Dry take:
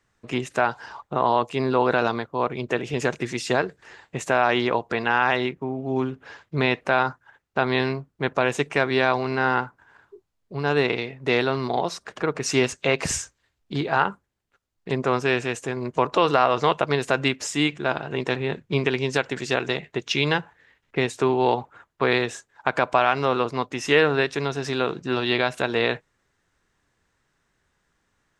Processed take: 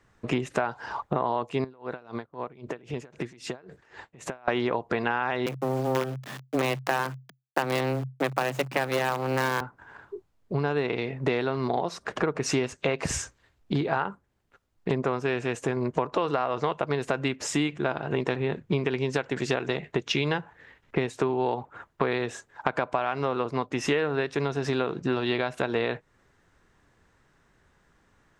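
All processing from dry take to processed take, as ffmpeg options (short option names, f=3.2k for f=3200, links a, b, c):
-filter_complex "[0:a]asettb=1/sr,asplit=3[a][b][c];[a]atrim=end=1.644[d];[b]atrim=start=1.64:end=4.48,asetpts=PTS-STARTPTS,afade=t=in:d=0.004:c=qsin,afade=t=out:st=2.836:d=0.004:c=qsin,acompressor=threshold=-35dB:ratio=6:attack=3.2:release=140:knee=1:detection=peak,aeval=exprs='val(0)*pow(10,-21*(0.5-0.5*cos(2*PI*3.8*n/s))/20)':c=same[e];[c]atrim=start=4.476[f];[d][e]acrossfade=d=0.004:c1=hsin:c2=qsin[g];[g][f]acrossfade=d=0.004:c1=qsin:c2=hsin,asettb=1/sr,asplit=3[h][i][j];[h]atrim=end=5.464[k];[i]atrim=start=5.46:end=9.61,asetpts=PTS-STARTPTS,afade=t=in:d=0.004:c=qsin,afade=t=out:st=4.146:d=0.004:c=qsin,acrusher=bits=4:dc=4:mix=0:aa=0.000001,afreqshift=130[l];[j]atrim=start=9.606[m];[k][l]acrossfade=d=0.004:c1=hsin:c2=qsin[n];[n][m]acrossfade=d=0.004:c1=qsin:c2=hsin,highshelf=f=2.2k:g=-8,acompressor=threshold=-32dB:ratio=6,volume=8.5dB"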